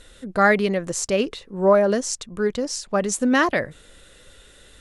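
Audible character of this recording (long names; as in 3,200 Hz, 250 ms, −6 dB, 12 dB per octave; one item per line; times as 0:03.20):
background noise floor −51 dBFS
spectral slope −4.0 dB per octave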